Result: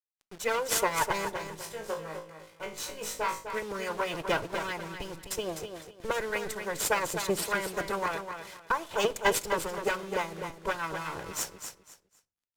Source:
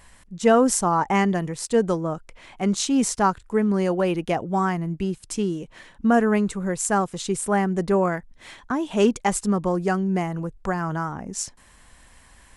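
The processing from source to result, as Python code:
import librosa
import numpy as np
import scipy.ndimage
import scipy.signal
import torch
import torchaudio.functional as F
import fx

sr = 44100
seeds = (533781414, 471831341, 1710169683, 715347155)

y = fx.lower_of_two(x, sr, delay_ms=2.0)
y = fx.high_shelf(y, sr, hz=9300.0, db=3.0)
y = fx.hpss(y, sr, part='harmonic', gain_db=-15)
y = fx.low_shelf(y, sr, hz=120.0, db=-7.0)
y = fx.quant_dither(y, sr, seeds[0], bits=8, dither='none')
y = fx.comb_fb(y, sr, f0_hz=53.0, decay_s=0.29, harmonics='all', damping=0.0, mix_pct=100, at=(1.29, 3.44))
y = fx.echo_feedback(y, sr, ms=253, feedback_pct=25, wet_db=-8.0)
y = fx.room_shoebox(y, sr, seeds[1], volume_m3=440.0, walls='furnished', distance_m=0.32)
y = np.interp(np.arange(len(y)), np.arange(len(y))[::2], y[::2])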